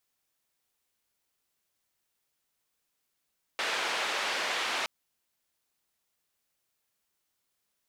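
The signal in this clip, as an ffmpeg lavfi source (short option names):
-f lavfi -i "anoisesrc=c=white:d=1.27:r=44100:seed=1,highpass=f=490,lowpass=f=3000,volume=-17.6dB"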